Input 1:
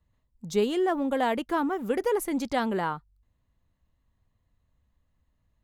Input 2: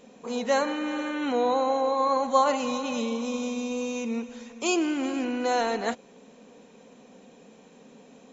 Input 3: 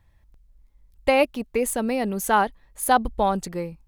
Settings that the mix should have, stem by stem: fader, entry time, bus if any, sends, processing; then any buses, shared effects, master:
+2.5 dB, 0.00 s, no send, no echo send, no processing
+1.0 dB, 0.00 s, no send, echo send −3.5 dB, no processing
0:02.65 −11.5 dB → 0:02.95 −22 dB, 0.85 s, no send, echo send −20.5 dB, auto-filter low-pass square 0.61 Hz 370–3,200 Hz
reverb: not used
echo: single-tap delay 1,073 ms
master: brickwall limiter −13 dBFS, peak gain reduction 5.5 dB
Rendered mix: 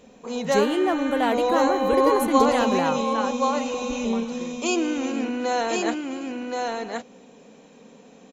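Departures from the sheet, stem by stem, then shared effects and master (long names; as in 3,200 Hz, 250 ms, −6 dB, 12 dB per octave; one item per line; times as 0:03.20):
stem 3 −11.5 dB → −2.0 dB
master: missing brickwall limiter −13 dBFS, peak gain reduction 5.5 dB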